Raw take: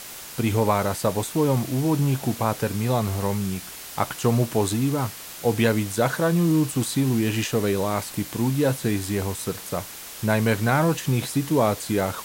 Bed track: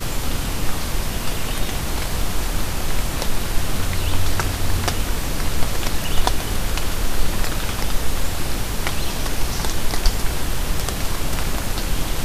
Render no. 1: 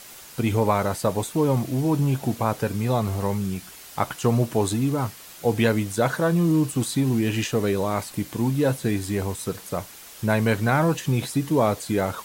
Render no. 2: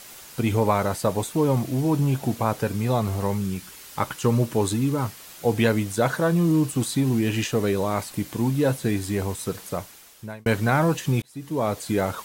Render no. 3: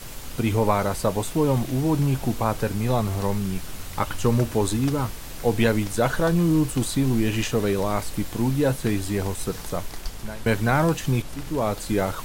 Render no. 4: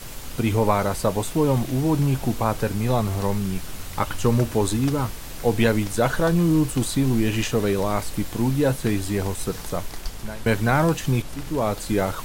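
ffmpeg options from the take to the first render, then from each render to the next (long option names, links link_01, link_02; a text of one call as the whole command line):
ffmpeg -i in.wav -af "afftdn=noise_reduction=6:noise_floor=-39" out.wav
ffmpeg -i in.wav -filter_complex "[0:a]asettb=1/sr,asplit=3[link_01][link_02][link_03];[link_01]atrim=end=3.414[link_04];[link_02]atrim=start=3.41:end=5.05,asetpts=PTS-STARTPTS,afade=type=in:duration=0.004:curve=qsin,afade=type=out:start_time=1.636:duration=0.004:curve=qsin,bandreject=frequency=700:width=6[link_05];[link_03]atrim=start=5.046[link_06];[link_04][link_05]acrossfade=duration=0.004:curve1=hsin:curve2=qsin[link_07];[link_07][link_06]acrossfade=duration=0.004:curve1=qsin:curve2=hsin,asplit=3[link_08][link_09][link_10];[link_08]atrim=end=10.46,asetpts=PTS-STARTPTS,afade=type=out:start_time=9.68:duration=0.78[link_11];[link_09]atrim=start=10.46:end=11.22,asetpts=PTS-STARTPTS,afade=type=in:duration=0.004:curve=hsin,afade=type=out:start_time=0.756:duration=0.004:curve=hsin[link_12];[link_10]atrim=start=11.22,asetpts=PTS-STARTPTS,afade=type=in:duration=0.66[link_13];[link_11][link_12][link_13]concat=n=3:v=0:a=1" out.wav
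ffmpeg -i in.wav -i bed.wav -filter_complex "[1:a]volume=-15dB[link_01];[0:a][link_01]amix=inputs=2:normalize=0" out.wav
ffmpeg -i in.wav -af "volume=1dB" out.wav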